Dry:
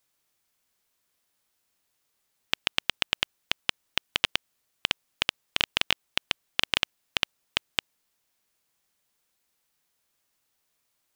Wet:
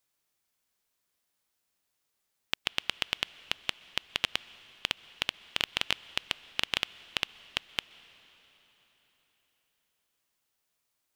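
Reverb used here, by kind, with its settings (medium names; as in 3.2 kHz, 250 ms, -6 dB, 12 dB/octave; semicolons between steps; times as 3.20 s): plate-style reverb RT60 4.3 s, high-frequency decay 0.9×, pre-delay 115 ms, DRR 18.5 dB; trim -4.5 dB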